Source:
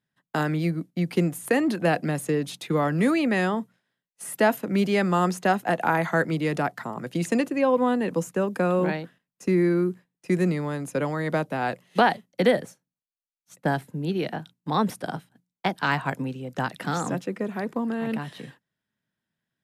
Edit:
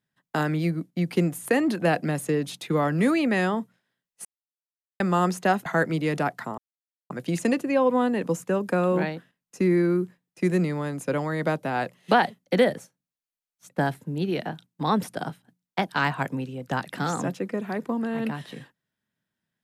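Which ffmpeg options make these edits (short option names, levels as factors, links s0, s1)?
-filter_complex "[0:a]asplit=5[s0][s1][s2][s3][s4];[s0]atrim=end=4.25,asetpts=PTS-STARTPTS,afade=t=out:st=4.246:d=0.004:c=hsin[s5];[s1]atrim=start=4.25:end=5,asetpts=PTS-STARTPTS,volume=0[s6];[s2]atrim=start=5:end=5.662,asetpts=PTS-STARTPTS,afade=t=in:d=0.004:c=hsin[s7];[s3]atrim=start=6.048:end=6.97,asetpts=PTS-STARTPTS,afade=t=out:st=0.918:d=0.004:c=hsin,apad=pad_dur=0.52[s8];[s4]atrim=start=6.97,asetpts=PTS-STARTPTS,afade=t=in:d=0.004:c=hsin[s9];[s5][s6][s7]concat=n=3:v=0:a=1[s10];[s8][s9]concat=n=2:v=0:a=1[s11];[s10][s11]acrossfade=d=0.004:c1=hsin:c2=hsin"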